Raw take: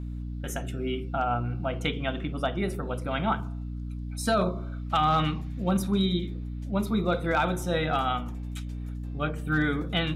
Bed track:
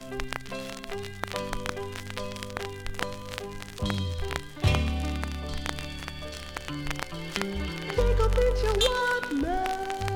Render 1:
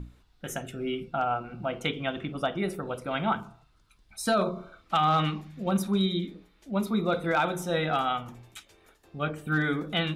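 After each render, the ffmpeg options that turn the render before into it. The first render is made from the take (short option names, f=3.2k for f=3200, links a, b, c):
-af "bandreject=f=60:t=h:w=6,bandreject=f=120:t=h:w=6,bandreject=f=180:t=h:w=6,bandreject=f=240:t=h:w=6,bandreject=f=300:t=h:w=6"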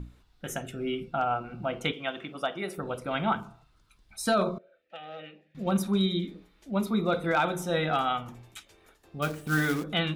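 -filter_complex "[0:a]asettb=1/sr,asplit=3[a][b][c];[a]atrim=end=1.924[d];[b]atrim=start=1.92:end=2.78,asetpts=PTS-STARTPTS,afade=t=in:d=0.004:c=qsin,afade=t=out:st=0.856:d=0.004:c=qsin,highpass=f=490:p=1[e];[c]atrim=start=2.776[f];[d][e]acrossfade=d=0.004:c1=hsin:c2=qsin[g];[g][f]acrossfade=d=0.004:c1=qsin:c2=hsin,asettb=1/sr,asplit=3[h][i][j];[h]atrim=end=4.584[k];[i]atrim=start=4.58:end=5.55,asetpts=PTS-STARTPTS,afade=t=in:d=0.004:c=qsin,afade=t=out:st=0.966:d=0.004:c=qsin,asplit=3[l][m][n];[l]bandpass=f=530:t=q:w=8,volume=0dB[o];[m]bandpass=f=1.84k:t=q:w=8,volume=-6dB[p];[n]bandpass=f=2.48k:t=q:w=8,volume=-9dB[q];[o][p][q]amix=inputs=3:normalize=0[r];[j]atrim=start=5.546[s];[k][r]acrossfade=d=0.004:c1=hsin:c2=qsin[t];[t][s]acrossfade=d=0.004:c1=qsin:c2=hsin,asettb=1/sr,asplit=3[u][v][w];[u]atrim=end=9.224[x];[v]atrim=start=9.22:end=9.84,asetpts=PTS-STARTPTS,afade=t=in:d=0.004:c=qsin,afade=t=out:st=0.616:d=0.004:c=qsin,acrusher=bits=3:mode=log:mix=0:aa=0.000001[y];[w]atrim=start=9.836[z];[x][y]acrossfade=d=0.004:c1=hsin:c2=qsin[aa];[aa][z]acrossfade=d=0.004:c1=qsin:c2=hsin"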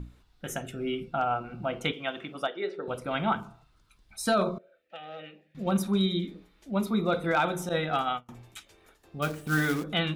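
-filter_complex "[0:a]asettb=1/sr,asplit=3[a][b][c];[a]atrim=end=2.474[d];[b]atrim=start=2.47:end=2.88,asetpts=PTS-STARTPTS,afade=t=in:d=0.004:c=qsin,afade=t=out:st=0.406:d=0.004:c=qsin,highpass=360,equalizer=f=420:t=q:w=4:g=9,equalizer=f=720:t=q:w=4:g=-8,equalizer=f=1.1k:t=q:w=4:g=-10,equalizer=f=2.6k:t=q:w=4:g=-6,equalizer=f=4k:t=q:w=4:g=3,lowpass=f=4.1k:w=0.5412,lowpass=f=4.1k:w=1.3066[e];[c]atrim=start=2.876[f];[d][e]acrossfade=d=0.004:c1=hsin:c2=qsin[g];[g][f]acrossfade=d=0.004:c1=qsin:c2=hsin,asettb=1/sr,asplit=3[h][i][j];[h]atrim=end=7.694[k];[i]atrim=start=7.69:end=8.29,asetpts=PTS-STARTPTS,afade=t=in:d=0.004:c=qsin,afade=t=out:st=0.596:d=0.004:c=qsin,agate=range=-33dB:threshold=-26dB:ratio=3:release=100:detection=peak[l];[j]atrim=start=8.286[m];[k][l]acrossfade=d=0.004:c1=hsin:c2=qsin[n];[n][m]acrossfade=d=0.004:c1=qsin:c2=hsin"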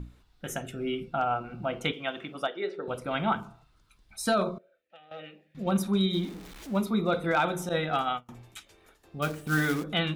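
-filter_complex "[0:a]asettb=1/sr,asplit=3[a][b][c];[a]atrim=end=6.134[d];[b]atrim=start=6.13:end=6.8,asetpts=PTS-STARTPTS,afade=t=in:d=0.004:c=qsin,afade=t=out:st=0.666:d=0.004:c=qsin,aeval=exprs='val(0)+0.5*0.00841*sgn(val(0))':c=same[e];[c]atrim=start=6.796[f];[d][e]acrossfade=d=0.004:c1=hsin:c2=qsin[g];[g][f]acrossfade=d=0.004:c1=qsin:c2=hsin,asplit=2[h][i];[h]atrim=end=5.11,asetpts=PTS-STARTPTS,afade=t=out:st=4.27:d=0.84:silence=0.188365[j];[i]atrim=start=5.11,asetpts=PTS-STARTPTS,afade=t=in:d=0.004:c=hsin:silence=0.188365[k];[j][k]concat=n=2:v=0:a=1"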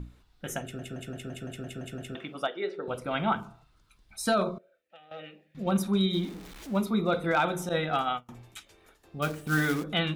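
-filter_complex "[0:a]asplit=10[a][b][c][d][e][f][g][h][i][j];[a]atrim=end=0.792[k];[b]atrim=start=0.618:end=0.792[l];[c]atrim=start=0.618:end=0.792[m];[d]atrim=start=0.618:end=0.792[n];[e]atrim=start=0.618:end=0.792[o];[f]atrim=start=0.618:end=0.792[p];[g]atrim=start=0.618:end=0.792[q];[h]atrim=start=0.618:end=0.792[r];[i]atrim=start=0.618:end=0.792[s];[j]atrim=start=2.148[t];[k][l]acrossfade=d=0.004:c1=hsin:c2=hsin[u];[u][m]acrossfade=d=0.004:c1=hsin:c2=hsin[v];[v][n]acrossfade=d=0.004:c1=hsin:c2=hsin[w];[w][o]acrossfade=d=0.004:c1=hsin:c2=hsin[x];[x][p]acrossfade=d=0.004:c1=hsin:c2=hsin[y];[y][q]acrossfade=d=0.004:c1=hsin:c2=hsin[z];[z][r]acrossfade=d=0.004:c1=hsin:c2=hsin[aa];[aa][s]acrossfade=d=0.004:c1=hsin:c2=hsin[ab];[ab][t]acrossfade=d=0.004:c1=hsin:c2=hsin"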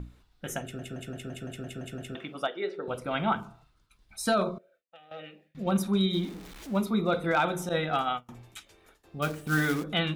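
-af "agate=range=-33dB:threshold=-59dB:ratio=3:detection=peak"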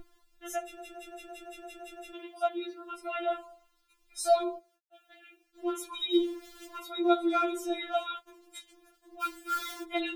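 -af "acrusher=bits=11:mix=0:aa=0.000001,afftfilt=real='re*4*eq(mod(b,16),0)':imag='im*4*eq(mod(b,16),0)':win_size=2048:overlap=0.75"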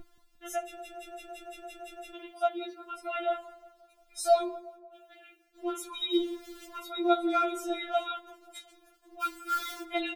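-filter_complex "[0:a]asplit=2[a][b];[b]adelay=13,volume=-13dB[c];[a][c]amix=inputs=2:normalize=0,asplit=2[d][e];[e]adelay=177,lowpass=f=1.7k:p=1,volume=-16.5dB,asplit=2[f][g];[g]adelay=177,lowpass=f=1.7k:p=1,volume=0.55,asplit=2[h][i];[i]adelay=177,lowpass=f=1.7k:p=1,volume=0.55,asplit=2[j][k];[k]adelay=177,lowpass=f=1.7k:p=1,volume=0.55,asplit=2[l][m];[m]adelay=177,lowpass=f=1.7k:p=1,volume=0.55[n];[d][f][h][j][l][n]amix=inputs=6:normalize=0"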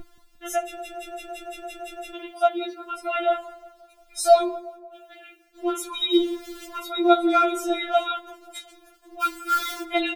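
-af "volume=8dB"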